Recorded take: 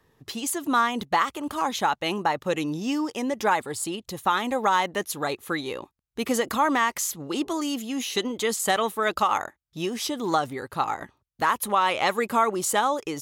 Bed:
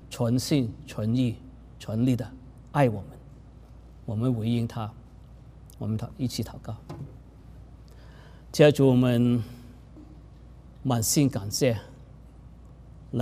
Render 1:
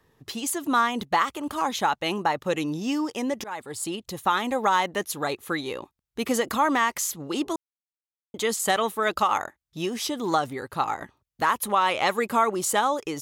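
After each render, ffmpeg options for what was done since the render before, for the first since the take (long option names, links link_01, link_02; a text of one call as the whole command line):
ffmpeg -i in.wav -filter_complex "[0:a]asplit=4[link_01][link_02][link_03][link_04];[link_01]atrim=end=3.44,asetpts=PTS-STARTPTS,afade=type=out:start_time=3.436:duration=0.004:curve=hsin:silence=0.0794328[link_05];[link_02]atrim=start=3.44:end=7.56,asetpts=PTS-STARTPTS,afade=type=in:duration=0.45:silence=0.0794328,afade=type=out:start_time=4.116:duration=0.004:curve=hsin[link_06];[link_03]atrim=start=7.56:end=8.34,asetpts=PTS-STARTPTS,volume=0[link_07];[link_04]atrim=start=8.34,asetpts=PTS-STARTPTS,afade=type=in:duration=0.004:curve=hsin[link_08];[link_05][link_06][link_07][link_08]concat=n=4:v=0:a=1" out.wav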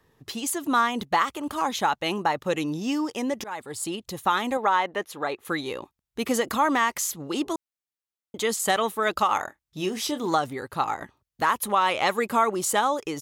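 ffmpeg -i in.wav -filter_complex "[0:a]asettb=1/sr,asplit=3[link_01][link_02][link_03];[link_01]atrim=end=4.574[link_04];[link_02]atrim=start=4.57:end=5.45,asetpts=PTS-STARTPTS,afade=type=in:duration=0.004:curve=qsin,afade=type=out:start_time=0.876:duration=0.004:curve=qsin,bass=frequency=250:gain=-9,treble=frequency=4000:gain=-12[link_05];[link_03]atrim=start=5.446[link_06];[link_04][link_05]acrossfade=duration=0.004:curve1=hsin:curve2=qsin[link_07];[link_07][link_06]acrossfade=duration=0.004:curve1=qsin:curve2=hsin,asplit=3[link_08][link_09][link_10];[link_08]afade=type=out:start_time=9.38:duration=0.02[link_11];[link_09]asplit=2[link_12][link_13];[link_13]adelay=27,volume=-9.5dB[link_14];[link_12][link_14]amix=inputs=2:normalize=0,afade=type=in:start_time=9.38:duration=0.02,afade=type=out:start_time=10.26:duration=0.02[link_15];[link_10]afade=type=in:start_time=10.26:duration=0.02[link_16];[link_11][link_15][link_16]amix=inputs=3:normalize=0" out.wav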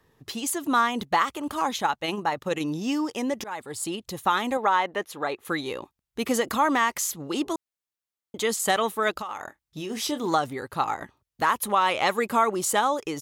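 ffmpeg -i in.wav -filter_complex "[0:a]asettb=1/sr,asplit=3[link_01][link_02][link_03];[link_01]atrim=end=1.764[link_04];[link_02]atrim=start=1.76:end=2.61,asetpts=PTS-STARTPTS,afade=type=in:duration=0.004:curve=qsin,afade=type=out:start_time=0.846:duration=0.004:curve=qsin,tremolo=f=21:d=0.4[link_05];[link_03]atrim=start=2.606[link_06];[link_04][link_05]acrossfade=duration=0.004:curve1=hsin:curve2=qsin[link_07];[link_07][link_06]acrossfade=duration=0.004:curve1=qsin:curve2=hsin,asplit=3[link_08][link_09][link_10];[link_08]afade=type=out:start_time=9.1:duration=0.02[link_11];[link_09]acompressor=threshold=-29dB:ratio=10:attack=3.2:release=140:knee=1:detection=peak,afade=type=in:start_time=9.1:duration=0.02,afade=type=out:start_time=9.89:duration=0.02[link_12];[link_10]afade=type=in:start_time=9.89:duration=0.02[link_13];[link_11][link_12][link_13]amix=inputs=3:normalize=0" out.wav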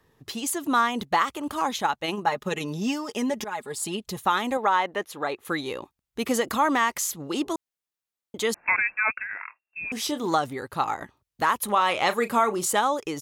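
ffmpeg -i in.wav -filter_complex "[0:a]asettb=1/sr,asplit=3[link_01][link_02][link_03];[link_01]atrim=end=2.264[link_04];[link_02]atrim=start=2.26:end=4.17,asetpts=PTS-STARTPTS,afade=type=in:duration=0.004:curve=qsin,afade=type=out:start_time=1.906:duration=0.004:curve=qsin,aecho=1:1:4.8:0.65,atrim=end_sample=84231[link_05];[link_03]atrim=start=4.166[link_06];[link_04][link_05]acrossfade=duration=0.004:curve1=hsin:curve2=qsin[link_07];[link_07][link_06]acrossfade=duration=0.004:curve1=qsin:curve2=hsin,asettb=1/sr,asplit=3[link_08][link_09][link_10];[link_08]atrim=end=8.544[link_11];[link_09]atrim=start=8.54:end=9.92,asetpts=PTS-STARTPTS,afade=type=in:duration=0.004:curve=qsin,afade=type=out:start_time=1.376:duration=0.004:curve=qsin,lowpass=frequency=2400:width_type=q:width=0.5098,lowpass=frequency=2400:width_type=q:width=0.6013,lowpass=frequency=2400:width_type=q:width=0.9,lowpass=frequency=2400:width_type=q:width=2.563,afreqshift=-2800[link_12];[link_10]atrim=start=9.916[link_13];[link_11][link_12]acrossfade=duration=0.004:curve1=hsin:curve2=qsin[link_14];[link_14][link_13]acrossfade=duration=0.004:curve1=qsin:curve2=hsin,asettb=1/sr,asplit=3[link_15][link_16][link_17];[link_15]atrim=end=11.654[link_18];[link_16]atrim=start=11.65:end=12.68,asetpts=PTS-STARTPTS,afade=type=in:duration=0.004:curve=qsin,afade=type=out:start_time=1.026:duration=0.004:curve=qsin,asplit=2[link_19][link_20];[link_20]adelay=34,volume=-12.5dB[link_21];[link_19][link_21]amix=inputs=2:normalize=0,atrim=end_sample=45423[link_22];[link_17]atrim=start=12.676[link_23];[link_18][link_22]acrossfade=duration=0.004:curve1=hsin:curve2=qsin[link_24];[link_24][link_23]acrossfade=duration=0.004:curve1=qsin:curve2=hsin" out.wav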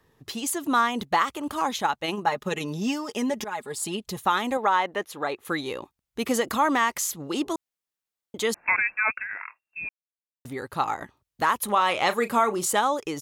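ffmpeg -i in.wav -filter_complex "[0:a]asplit=3[link_01][link_02][link_03];[link_01]atrim=end=9.89,asetpts=PTS-STARTPTS,afade=type=out:start_time=9.886:duration=0.004:curve=hsin[link_04];[link_02]atrim=start=9.89:end=10.45,asetpts=PTS-STARTPTS,volume=0[link_05];[link_03]atrim=start=10.45,asetpts=PTS-STARTPTS,afade=type=in:duration=0.004:curve=hsin[link_06];[link_04][link_05][link_06]concat=n=3:v=0:a=1" out.wav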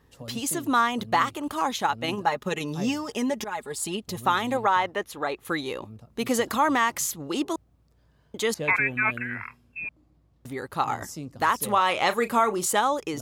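ffmpeg -i in.wav -i bed.wav -filter_complex "[1:a]volume=-15.5dB[link_01];[0:a][link_01]amix=inputs=2:normalize=0" out.wav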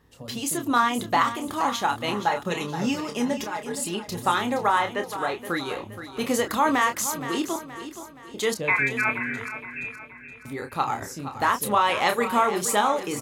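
ffmpeg -i in.wav -filter_complex "[0:a]asplit=2[link_01][link_02];[link_02]adelay=29,volume=-7dB[link_03];[link_01][link_03]amix=inputs=2:normalize=0,aecho=1:1:472|944|1416|1888|2360:0.266|0.12|0.0539|0.0242|0.0109" out.wav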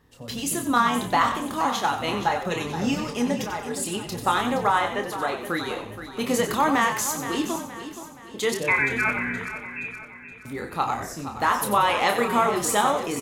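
ffmpeg -i in.wav -filter_complex "[0:a]asplit=2[link_01][link_02];[link_02]adelay=25,volume=-13dB[link_03];[link_01][link_03]amix=inputs=2:normalize=0,asplit=2[link_04][link_05];[link_05]asplit=4[link_06][link_07][link_08][link_09];[link_06]adelay=92,afreqshift=-59,volume=-9dB[link_10];[link_07]adelay=184,afreqshift=-118,volume=-18.4dB[link_11];[link_08]adelay=276,afreqshift=-177,volume=-27.7dB[link_12];[link_09]adelay=368,afreqshift=-236,volume=-37.1dB[link_13];[link_10][link_11][link_12][link_13]amix=inputs=4:normalize=0[link_14];[link_04][link_14]amix=inputs=2:normalize=0" out.wav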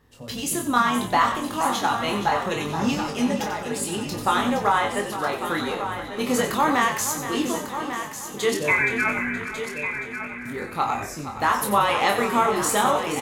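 ffmpeg -i in.wav -filter_complex "[0:a]asplit=2[link_01][link_02];[link_02]adelay=20,volume=-6.5dB[link_03];[link_01][link_03]amix=inputs=2:normalize=0,aecho=1:1:1147:0.335" out.wav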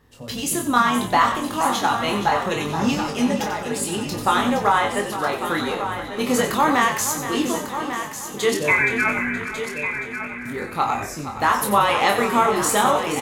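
ffmpeg -i in.wav -af "volume=2.5dB" out.wav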